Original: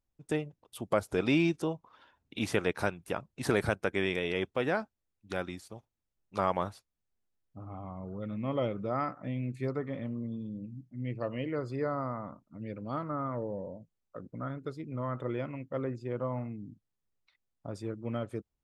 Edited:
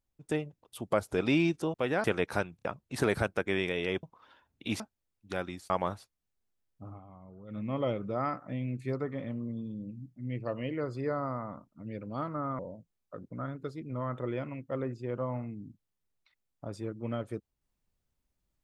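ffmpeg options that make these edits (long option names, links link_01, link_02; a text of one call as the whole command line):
ffmpeg -i in.wav -filter_complex "[0:a]asplit=12[link_01][link_02][link_03][link_04][link_05][link_06][link_07][link_08][link_09][link_10][link_11][link_12];[link_01]atrim=end=1.742[link_13];[link_02]atrim=start=4.498:end=4.802[link_14];[link_03]atrim=start=2.508:end=3.062[link_15];[link_04]atrim=start=3.028:end=3.062[link_16];[link_05]atrim=start=3.028:end=3.062[link_17];[link_06]atrim=start=3.118:end=4.502[link_18];[link_07]atrim=start=1.738:end=2.512[link_19];[link_08]atrim=start=4.798:end=5.702[link_20];[link_09]atrim=start=6.448:end=7.75,asetpts=PTS-STARTPTS,afade=type=out:start_time=1.182:duration=0.12:curve=qsin:silence=0.316228[link_21];[link_10]atrim=start=7.75:end=8.23,asetpts=PTS-STARTPTS,volume=-10dB[link_22];[link_11]atrim=start=8.23:end=13.342,asetpts=PTS-STARTPTS,afade=type=in:duration=0.12:curve=qsin:silence=0.316228[link_23];[link_12]atrim=start=13.608[link_24];[link_13][link_14]acrossfade=duration=0.004:curve1=hsin:curve2=hsin[link_25];[link_25][link_15]acrossfade=duration=0.004:curve1=hsin:curve2=hsin[link_26];[link_26][link_16]acrossfade=duration=0.004:curve1=hsin:curve2=hsin[link_27];[link_27][link_17]acrossfade=duration=0.004:curve1=hsin:curve2=hsin[link_28];[link_28][link_18]acrossfade=duration=0.004:curve1=hsin:curve2=hsin[link_29];[link_29][link_19]acrossfade=duration=0.004:curve1=hsin:curve2=hsin[link_30];[link_30][link_20]acrossfade=duration=0.004:curve1=hsin:curve2=hsin[link_31];[link_21][link_22][link_23]concat=n=3:v=0:a=1[link_32];[link_31][link_32]acrossfade=duration=0.004:curve1=hsin:curve2=hsin[link_33];[link_33][link_24]acrossfade=duration=0.004:curve1=hsin:curve2=hsin" out.wav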